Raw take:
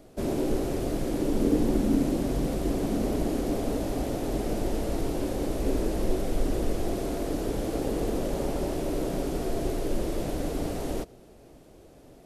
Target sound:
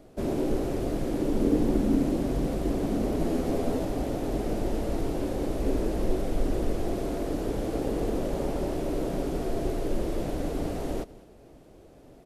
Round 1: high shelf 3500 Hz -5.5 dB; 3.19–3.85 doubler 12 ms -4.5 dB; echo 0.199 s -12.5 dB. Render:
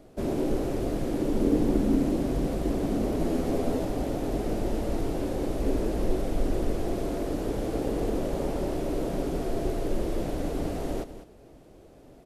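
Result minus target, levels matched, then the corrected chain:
echo-to-direct +8 dB
high shelf 3500 Hz -5.5 dB; 3.19–3.85 doubler 12 ms -4.5 dB; echo 0.199 s -20.5 dB

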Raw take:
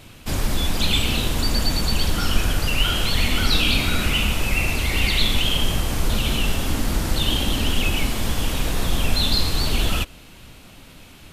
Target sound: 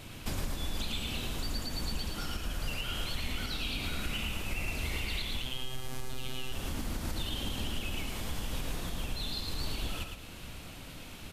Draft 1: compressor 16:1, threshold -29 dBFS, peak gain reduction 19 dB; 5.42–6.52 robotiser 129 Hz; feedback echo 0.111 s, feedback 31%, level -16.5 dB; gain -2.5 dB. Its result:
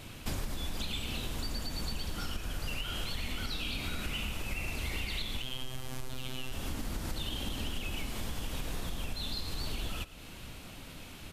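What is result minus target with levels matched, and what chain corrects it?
echo-to-direct -11.5 dB
compressor 16:1, threshold -29 dBFS, peak gain reduction 19 dB; 5.42–6.52 robotiser 129 Hz; feedback echo 0.111 s, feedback 31%, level -5 dB; gain -2.5 dB

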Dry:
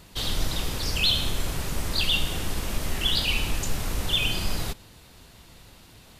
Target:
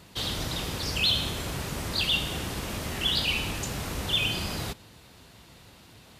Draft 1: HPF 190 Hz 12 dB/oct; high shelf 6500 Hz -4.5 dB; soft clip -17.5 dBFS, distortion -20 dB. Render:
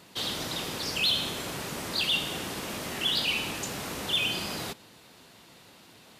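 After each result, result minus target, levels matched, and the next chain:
125 Hz band -7.5 dB; soft clip: distortion +11 dB
HPF 71 Hz 12 dB/oct; high shelf 6500 Hz -4.5 dB; soft clip -17.5 dBFS, distortion -20 dB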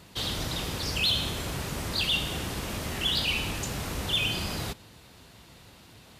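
soft clip: distortion +11 dB
HPF 71 Hz 12 dB/oct; high shelf 6500 Hz -4.5 dB; soft clip -11 dBFS, distortion -31 dB

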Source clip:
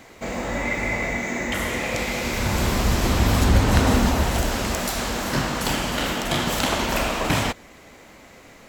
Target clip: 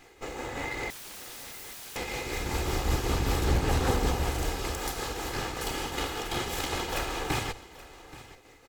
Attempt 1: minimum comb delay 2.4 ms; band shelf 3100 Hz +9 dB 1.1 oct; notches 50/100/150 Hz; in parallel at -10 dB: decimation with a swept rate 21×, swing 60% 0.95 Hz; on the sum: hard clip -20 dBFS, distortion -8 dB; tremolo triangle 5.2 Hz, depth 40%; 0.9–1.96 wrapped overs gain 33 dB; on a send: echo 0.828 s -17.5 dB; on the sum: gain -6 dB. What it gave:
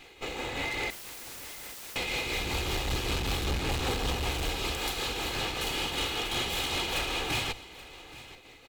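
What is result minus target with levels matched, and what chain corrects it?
hard clip: distortion +17 dB; 4000 Hz band +5.0 dB
minimum comb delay 2.4 ms; notches 50/100/150 Hz; in parallel at -10 dB: decimation with a swept rate 21×, swing 60% 0.95 Hz; on the sum: hard clip -10.5 dBFS, distortion -25 dB; tremolo triangle 5.2 Hz, depth 40%; 0.9–1.96 wrapped overs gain 33 dB; on a send: echo 0.828 s -17.5 dB; on the sum: gain -6 dB

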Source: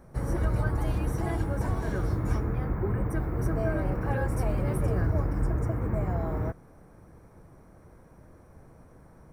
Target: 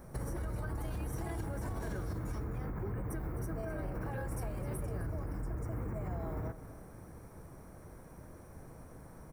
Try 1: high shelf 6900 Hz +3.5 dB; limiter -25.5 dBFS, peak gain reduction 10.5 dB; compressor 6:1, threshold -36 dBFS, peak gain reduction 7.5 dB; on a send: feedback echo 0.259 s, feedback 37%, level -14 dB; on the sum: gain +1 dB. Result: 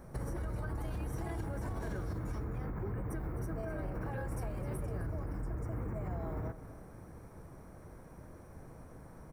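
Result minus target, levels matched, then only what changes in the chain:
8000 Hz band -4.0 dB
change: high shelf 6900 Hz +10 dB

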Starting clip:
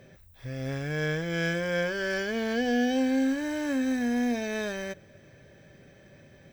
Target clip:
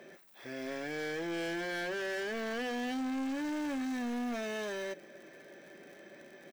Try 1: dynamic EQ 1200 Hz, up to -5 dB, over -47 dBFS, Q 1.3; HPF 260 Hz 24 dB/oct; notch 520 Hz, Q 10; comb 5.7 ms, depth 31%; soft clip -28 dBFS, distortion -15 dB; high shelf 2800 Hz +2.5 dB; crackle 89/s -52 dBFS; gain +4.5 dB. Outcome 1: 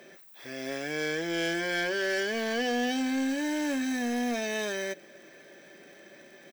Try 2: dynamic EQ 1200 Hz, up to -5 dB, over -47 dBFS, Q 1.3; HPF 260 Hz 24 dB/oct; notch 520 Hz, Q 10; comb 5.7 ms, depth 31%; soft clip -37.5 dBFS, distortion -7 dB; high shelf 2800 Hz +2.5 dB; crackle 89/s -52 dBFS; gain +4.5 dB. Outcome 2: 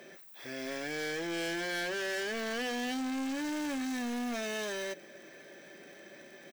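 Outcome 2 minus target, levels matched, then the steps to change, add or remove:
4000 Hz band +4.0 dB
change: high shelf 2800 Hz -6 dB

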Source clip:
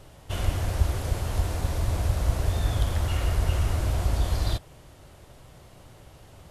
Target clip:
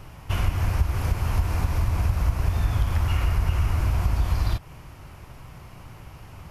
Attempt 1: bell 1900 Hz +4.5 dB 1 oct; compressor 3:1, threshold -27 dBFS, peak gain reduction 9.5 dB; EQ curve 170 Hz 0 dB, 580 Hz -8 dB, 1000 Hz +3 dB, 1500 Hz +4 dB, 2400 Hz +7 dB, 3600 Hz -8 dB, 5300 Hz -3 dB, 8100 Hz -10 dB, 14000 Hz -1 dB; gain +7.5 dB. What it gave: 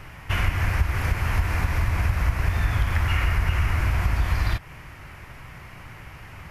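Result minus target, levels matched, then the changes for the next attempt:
2000 Hz band +8.5 dB
change: bell 1900 Hz -7 dB 1 oct

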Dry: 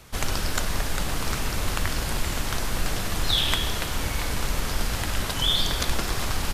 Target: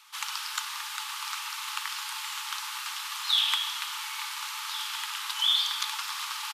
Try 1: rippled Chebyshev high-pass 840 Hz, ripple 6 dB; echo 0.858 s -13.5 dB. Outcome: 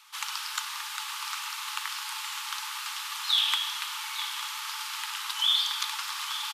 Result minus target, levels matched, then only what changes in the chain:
echo 0.557 s early
change: echo 1.415 s -13.5 dB

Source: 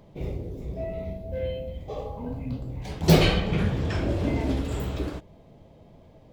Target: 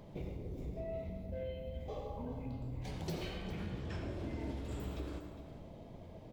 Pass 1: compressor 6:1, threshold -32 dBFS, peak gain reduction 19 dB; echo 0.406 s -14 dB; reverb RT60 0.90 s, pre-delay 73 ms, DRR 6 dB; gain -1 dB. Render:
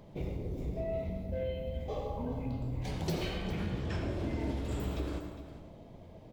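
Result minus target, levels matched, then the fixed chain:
compressor: peak gain reduction -6 dB
compressor 6:1, threshold -39.5 dBFS, peak gain reduction 25 dB; echo 0.406 s -14 dB; reverb RT60 0.90 s, pre-delay 73 ms, DRR 6 dB; gain -1 dB

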